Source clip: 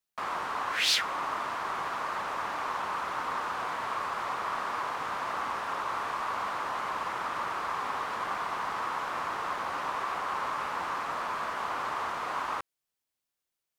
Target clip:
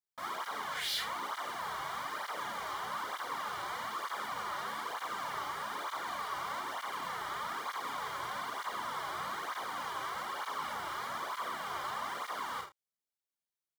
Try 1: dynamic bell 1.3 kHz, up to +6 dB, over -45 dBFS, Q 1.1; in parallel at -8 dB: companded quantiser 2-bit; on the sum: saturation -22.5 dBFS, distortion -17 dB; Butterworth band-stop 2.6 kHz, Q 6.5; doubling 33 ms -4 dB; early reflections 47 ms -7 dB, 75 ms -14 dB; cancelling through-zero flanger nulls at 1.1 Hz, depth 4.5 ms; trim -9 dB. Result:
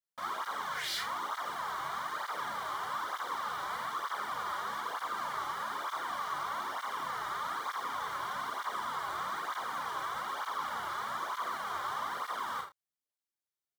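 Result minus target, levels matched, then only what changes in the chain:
4 kHz band -2.5 dB
change: dynamic bell 3.2 kHz, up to +6 dB, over -45 dBFS, Q 1.1

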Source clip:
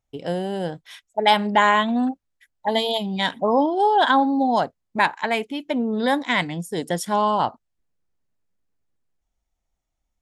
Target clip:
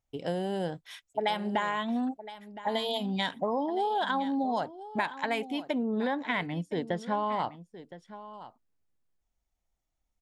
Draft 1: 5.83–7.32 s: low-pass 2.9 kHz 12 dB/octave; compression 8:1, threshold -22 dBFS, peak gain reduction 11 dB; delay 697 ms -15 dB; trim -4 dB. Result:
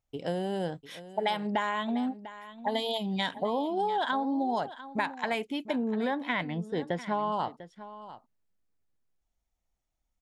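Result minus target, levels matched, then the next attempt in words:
echo 318 ms early
5.83–7.32 s: low-pass 2.9 kHz 12 dB/octave; compression 8:1, threshold -22 dBFS, peak gain reduction 11 dB; delay 1015 ms -15 dB; trim -4 dB

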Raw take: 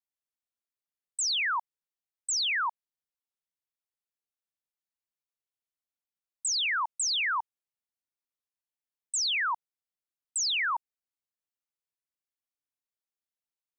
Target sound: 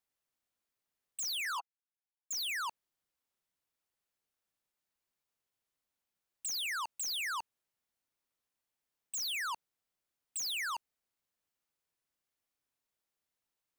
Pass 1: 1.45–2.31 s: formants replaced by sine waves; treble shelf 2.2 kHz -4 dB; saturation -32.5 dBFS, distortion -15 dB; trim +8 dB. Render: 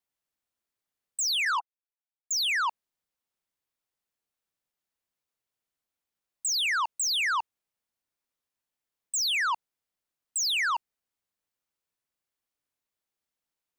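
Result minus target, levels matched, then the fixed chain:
saturation: distortion -7 dB
1.45–2.31 s: formants replaced by sine waves; treble shelf 2.2 kHz -4 dB; saturation -44 dBFS, distortion -8 dB; trim +8 dB

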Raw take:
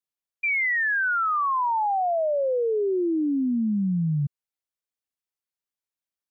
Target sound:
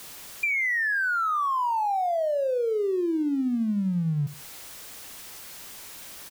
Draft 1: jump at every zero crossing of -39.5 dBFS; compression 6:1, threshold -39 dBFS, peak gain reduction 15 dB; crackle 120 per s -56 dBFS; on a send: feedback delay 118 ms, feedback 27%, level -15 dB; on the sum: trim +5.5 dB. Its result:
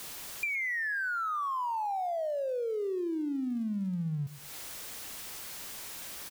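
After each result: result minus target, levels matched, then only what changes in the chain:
echo 45 ms late; compression: peak gain reduction +7 dB
change: feedback delay 73 ms, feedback 27%, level -15 dB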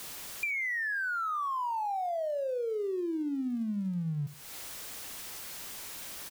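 compression: peak gain reduction +7 dB
change: compression 6:1, threshold -30.5 dBFS, peak gain reduction 8 dB

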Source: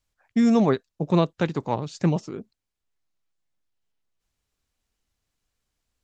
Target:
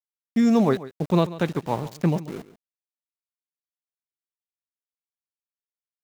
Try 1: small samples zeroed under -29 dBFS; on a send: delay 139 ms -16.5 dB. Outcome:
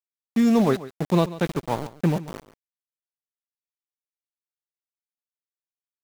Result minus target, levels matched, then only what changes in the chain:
small samples zeroed: distortion +8 dB
change: small samples zeroed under -36.5 dBFS

